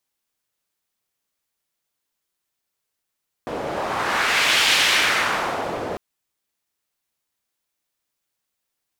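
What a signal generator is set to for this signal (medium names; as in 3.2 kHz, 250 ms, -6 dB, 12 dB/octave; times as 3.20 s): wind-like swept noise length 2.50 s, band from 530 Hz, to 2.9 kHz, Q 1.3, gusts 1, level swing 11 dB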